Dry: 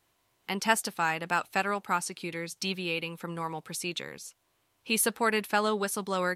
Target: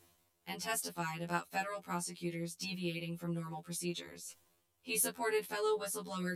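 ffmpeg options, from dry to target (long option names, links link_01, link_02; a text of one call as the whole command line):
ffmpeg -i in.wav -af "equalizer=frequency=1500:width=0.38:gain=-7.5,areverse,acompressor=mode=upward:threshold=-40dB:ratio=2.5,areverse,afftfilt=real='re*2*eq(mod(b,4),0)':imag='im*2*eq(mod(b,4),0)':win_size=2048:overlap=0.75,volume=-1.5dB" out.wav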